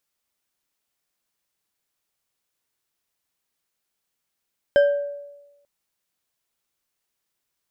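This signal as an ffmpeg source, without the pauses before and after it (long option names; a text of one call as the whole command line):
ffmpeg -f lavfi -i "aevalsrc='0.299*pow(10,-3*t/1.07)*sin(2*PI*573*t)+0.0891*pow(10,-3*t/0.526)*sin(2*PI*1579.8*t)+0.0266*pow(10,-3*t/0.328)*sin(2*PI*3096.5*t)+0.00794*pow(10,-3*t/0.231)*sin(2*PI*5118.6*t)+0.00237*pow(10,-3*t/0.174)*sin(2*PI*7643.8*t)':duration=0.89:sample_rate=44100" out.wav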